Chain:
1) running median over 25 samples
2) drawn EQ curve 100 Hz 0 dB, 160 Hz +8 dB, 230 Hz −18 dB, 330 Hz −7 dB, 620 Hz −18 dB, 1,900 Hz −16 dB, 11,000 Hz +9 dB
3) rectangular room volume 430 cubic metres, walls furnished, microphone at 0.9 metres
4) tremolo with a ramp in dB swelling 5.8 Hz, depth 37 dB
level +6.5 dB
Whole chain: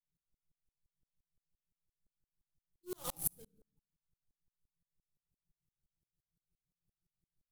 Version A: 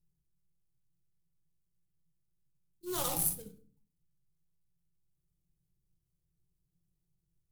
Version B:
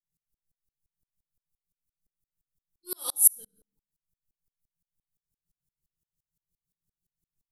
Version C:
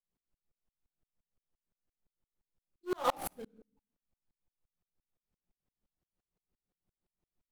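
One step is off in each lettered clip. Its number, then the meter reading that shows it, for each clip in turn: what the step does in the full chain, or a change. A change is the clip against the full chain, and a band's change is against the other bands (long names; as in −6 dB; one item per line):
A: 4, 500 Hz band −2.0 dB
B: 1, 8 kHz band +15.5 dB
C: 2, 8 kHz band −17.0 dB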